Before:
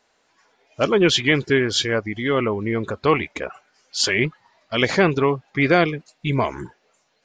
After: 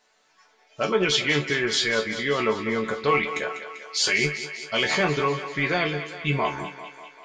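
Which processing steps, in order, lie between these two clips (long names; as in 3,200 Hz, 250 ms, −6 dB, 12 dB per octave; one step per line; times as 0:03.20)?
low-shelf EQ 490 Hz −7 dB
in parallel at −2.5 dB: compressor whose output falls as the input rises −25 dBFS
on the sum: resonators tuned to a chord D3 major, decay 0.2 s
feedback echo with a high-pass in the loop 196 ms, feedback 67%, high-pass 310 Hz, level −11 dB
level +8 dB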